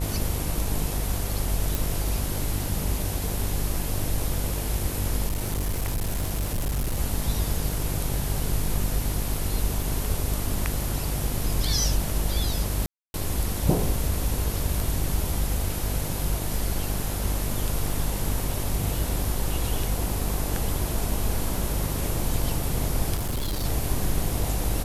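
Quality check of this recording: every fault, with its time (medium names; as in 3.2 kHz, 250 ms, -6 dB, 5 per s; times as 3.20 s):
buzz 50 Hz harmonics 21 -30 dBFS
1.75 s: pop
5.28–6.98 s: clipped -22.5 dBFS
12.86–13.14 s: dropout 281 ms
23.15–23.65 s: clipped -24 dBFS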